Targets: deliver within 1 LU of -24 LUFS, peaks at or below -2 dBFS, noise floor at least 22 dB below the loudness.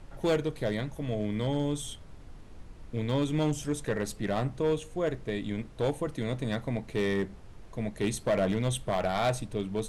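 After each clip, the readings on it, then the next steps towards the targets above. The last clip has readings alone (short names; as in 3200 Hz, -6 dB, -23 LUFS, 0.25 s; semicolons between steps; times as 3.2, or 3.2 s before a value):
clipped 1.0%; flat tops at -21.0 dBFS; noise floor -49 dBFS; noise floor target -53 dBFS; loudness -31.0 LUFS; peak -21.0 dBFS; loudness target -24.0 LUFS
-> clip repair -21 dBFS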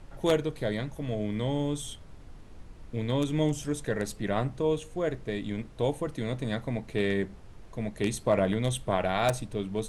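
clipped 0.0%; noise floor -49 dBFS; noise floor target -53 dBFS
-> noise print and reduce 6 dB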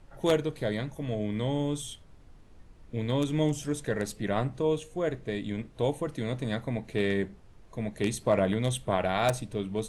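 noise floor -54 dBFS; loudness -30.5 LUFS; peak -12.0 dBFS; loudness target -24.0 LUFS
-> gain +6.5 dB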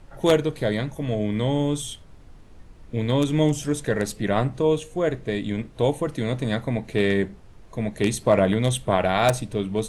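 loudness -24.0 LUFS; peak -5.5 dBFS; noise floor -47 dBFS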